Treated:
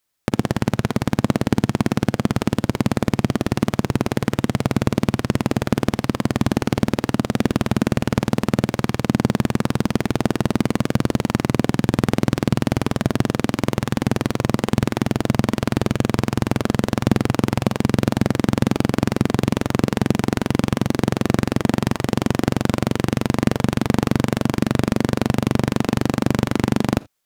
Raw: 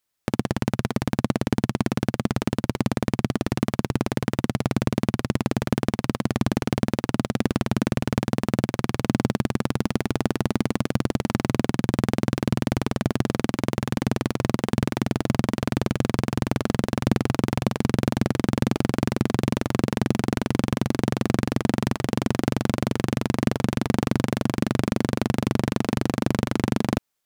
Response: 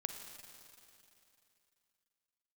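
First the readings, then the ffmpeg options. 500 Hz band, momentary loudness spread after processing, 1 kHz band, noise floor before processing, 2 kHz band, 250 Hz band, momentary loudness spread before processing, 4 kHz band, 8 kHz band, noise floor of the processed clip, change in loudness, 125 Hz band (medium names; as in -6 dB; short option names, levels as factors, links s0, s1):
+4.0 dB, 2 LU, +4.0 dB, -61 dBFS, +4.0 dB, +4.0 dB, 2 LU, +4.0 dB, +4.0 dB, -44 dBFS, +4.0 dB, +4.0 dB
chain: -filter_complex "[0:a]asplit=2[s0][s1];[1:a]atrim=start_sample=2205,atrim=end_sample=3969[s2];[s1][s2]afir=irnorm=-1:irlink=0,volume=0.708[s3];[s0][s3]amix=inputs=2:normalize=0"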